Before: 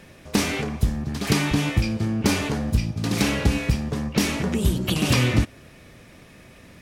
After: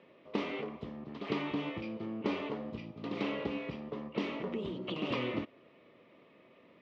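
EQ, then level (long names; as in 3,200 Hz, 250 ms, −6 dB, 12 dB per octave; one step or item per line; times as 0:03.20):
loudspeaker in its box 360–2,700 Hz, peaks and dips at 780 Hz −8 dB, 1,500 Hz −9 dB, 2,400 Hz −7 dB
parametric band 1,700 Hz −9 dB 0.32 octaves
−5.5 dB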